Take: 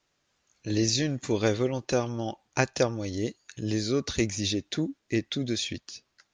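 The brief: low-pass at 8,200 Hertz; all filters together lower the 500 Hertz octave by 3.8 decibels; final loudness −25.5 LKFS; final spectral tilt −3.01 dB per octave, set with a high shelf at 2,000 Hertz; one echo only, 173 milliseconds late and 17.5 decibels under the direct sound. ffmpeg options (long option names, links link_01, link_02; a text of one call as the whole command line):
ffmpeg -i in.wav -af "lowpass=8200,equalizer=frequency=500:width_type=o:gain=-5.5,highshelf=frequency=2000:gain=8,aecho=1:1:173:0.133,volume=1.5dB" out.wav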